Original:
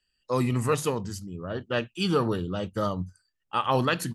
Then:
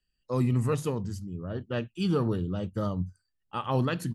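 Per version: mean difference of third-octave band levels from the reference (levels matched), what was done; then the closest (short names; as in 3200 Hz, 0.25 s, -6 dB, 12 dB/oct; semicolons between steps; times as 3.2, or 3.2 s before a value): 3.5 dB: low shelf 380 Hz +11.5 dB; gain -8.5 dB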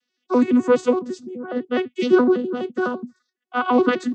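9.5 dB: arpeggiated vocoder bare fifth, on B3, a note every 84 ms; gain +8.5 dB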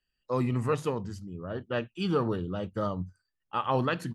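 2.5 dB: LPF 2100 Hz 6 dB/oct; gain -2.5 dB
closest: third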